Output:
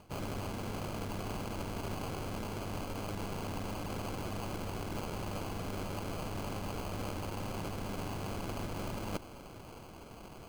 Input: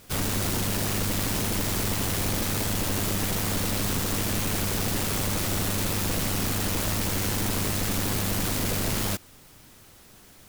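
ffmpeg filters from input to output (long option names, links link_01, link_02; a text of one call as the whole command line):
ffmpeg -i in.wav -af "areverse,acompressor=threshold=-38dB:ratio=10,areverse,acrusher=samples=24:mix=1:aa=0.000001,volume=2dB" out.wav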